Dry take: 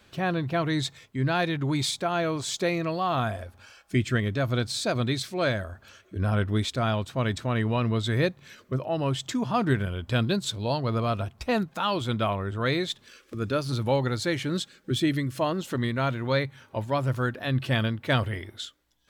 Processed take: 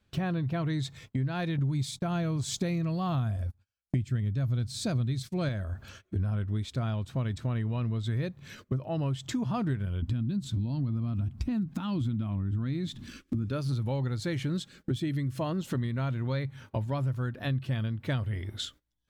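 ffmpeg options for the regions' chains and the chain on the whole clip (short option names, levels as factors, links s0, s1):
-filter_complex "[0:a]asettb=1/sr,asplit=3[s0][s1][s2];[s0]atrim=end=1.584[s3];[s1]atrim=start=1.58:end=5.49,asetpts=PTS-STARTPTS,afade=t=in:d=0.004:c=qsin,afade=t=out:st=3.906:d=0.004:c=qsin,bass=f=250:g=8,treble=f=4000:g=5,agate=range=0.0447:threshold=0.0126:ratio=16:release=100:detection=peak[s4];[s2]atrim=start=5.486[s5];[s3][s4]acrossfade=d=0.004:c1=hsin:c2=qsin[s6];[s6][s5]acrossfade=d=0.004:c1=qsin:c2=hsin,asettb=1/sr,asplit=3[s7][s8][s9];[s7]atrim=end=10.024[s10];[s8]atrim=start=10.02:end=13.45,asetpts=PTS-STARTPTS,afade=t=in:d=0.004:c=qsin,afade=t=out:st=3.426:d=0.004:c=qsin,acompressor=threshold=0.02:ratio=3:attack=3.2:release=140:knee=1:detection=peak,lowshelf=f=360:t=q:w=3:g=7.5[s11];[s9]atrim=start=13.446[s12];[s10][s11]acrossfade=d=0.004:c1=hsin:c2=qsin[s13];[s13][s12]acrossfade=d=0.004:c1=qsin:c2=hsin,agate=range=0.1:threshold=0.00282:ratio=16:detection=peak,bass=f=250:g=11,treble=f=4000:g=0,acompressor=threshold=0.0316:ratio=6,volume=1.19"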